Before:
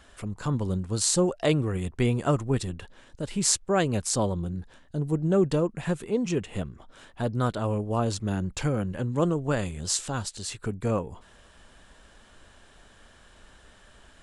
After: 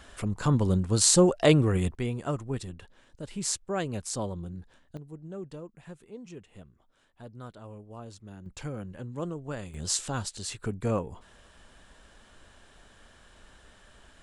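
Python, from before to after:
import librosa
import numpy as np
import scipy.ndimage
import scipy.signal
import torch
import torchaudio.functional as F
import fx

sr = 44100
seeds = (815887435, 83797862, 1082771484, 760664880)

y = fx.gain(x, sr, db=fx.steps((0.0, 3.5), (1.95, -7.0), (4.97, -17.5), (8.46, -10.0), (9.74, -1.5)))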